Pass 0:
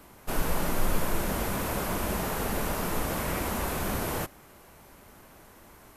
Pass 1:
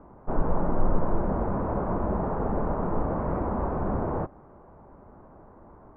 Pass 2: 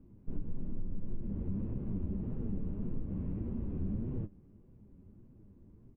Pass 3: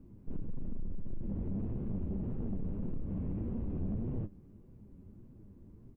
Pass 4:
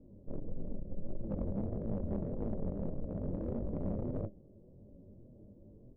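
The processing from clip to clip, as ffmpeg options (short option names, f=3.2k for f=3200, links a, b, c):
-af "lowpass=f=1.1k:w=0.5412,lowpass=f=1.1k:w=1.3066,volume=4dB"
-af "firequalizer=gain_entry='entry(210,0);entry(700,-28);entry(1300,-26);entry(2700,-2)':delay=0.05:min_phase=1,acompressor=threshold=-28dB:ratio=6,flanger=delay=7.6:depth=3.9:regen=46:speed=1.7:shape=triangular,volume=1dB"
-af "asoftclip=type=tanh:threshold=-32.5dB,volume=3dB"
-filter_complex "[0:a]lowpass=f=580:t=q:w=5.8,flanger=delay=18:depth=6.6:speed=1.6,asplit=2[a][b];[b]acrusher=bits=4:mix=0:aa=0.5,volume=-8dB[c];[a][c]amix=inputs=2:normalize=0"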